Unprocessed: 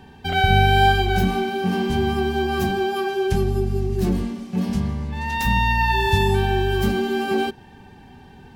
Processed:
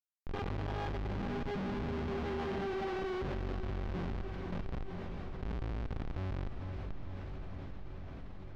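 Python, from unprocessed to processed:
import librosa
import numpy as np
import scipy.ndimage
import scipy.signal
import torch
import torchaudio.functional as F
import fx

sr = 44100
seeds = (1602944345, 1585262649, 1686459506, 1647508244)

p1 = fx.doppler_pass(x, sr, speed_mps=16, closest_m=6.6, pass_at_s=2.64)
p2 = fx.rider(p1, sr, range_db=3, speed_s=0.5)
p3 = p1 + (p2 * 10.0 ** (2.0 / 20.0))
p4 = fx.vibrato(p3, sr, rate_hz=9.4, depth_cents=6.3)
p5 = fx.schmitt(p4, sr, flips_db=-22.0)
p6 = fx.air_absorb(p5, sr, metres=230.0)
p7 = fx.comb_fb(p6, sr, f0_hz=390.0, decay_s=0.64, harmonics='all', damping=0.0, mix_pct=60)
p8 = fx.echo_diffused(p7, sr, ms=511, feedback_pct=52, wet_db=-12)
p9 = fx.env_flatten(p8, sr, amount_pct=70)
y = p9 * 10.0 ** (-7.0 / 20.0)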